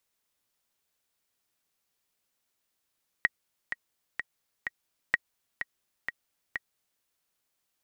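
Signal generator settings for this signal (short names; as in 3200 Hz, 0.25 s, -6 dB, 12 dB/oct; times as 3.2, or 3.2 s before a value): metronome 127 bpm, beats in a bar 4, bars 2, 1900 Hz, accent 9.5 dB -9 dBFS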